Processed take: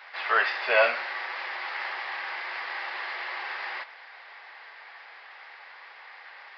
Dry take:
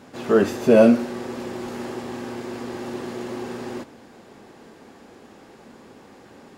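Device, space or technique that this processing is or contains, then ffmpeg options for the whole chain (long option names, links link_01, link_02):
musical greeting card: -af "aresample=11025,aresample=44100,highpass=frequency=820:width=0.5412,highpass=frequency=820:width=1.3066,equalizer=frequency=2000:width_type=o:width=0.57:gain=11.5,volume=3dB"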